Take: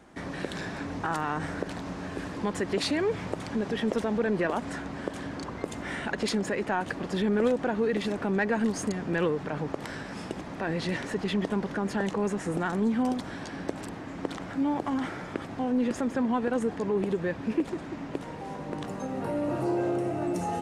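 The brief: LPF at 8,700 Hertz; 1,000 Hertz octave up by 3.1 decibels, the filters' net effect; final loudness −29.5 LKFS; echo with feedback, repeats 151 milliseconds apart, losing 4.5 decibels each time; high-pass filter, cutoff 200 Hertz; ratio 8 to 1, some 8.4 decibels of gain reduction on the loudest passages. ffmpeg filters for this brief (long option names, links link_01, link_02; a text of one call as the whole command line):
ffmpeg -i in.wav -af "highpass=200,lowpass=8700,equalizer=frequency=1000:width_type=o:gain=4,acompressor=threshold=-30dB:ratio=8,aecho=1:1:151|302|453|604|755|906|1057|1208|1359:0.596|0.357|0.214|0.129|0.0772|0.0463|0.0278|0.0167|0.01,volume=4dB" out.wav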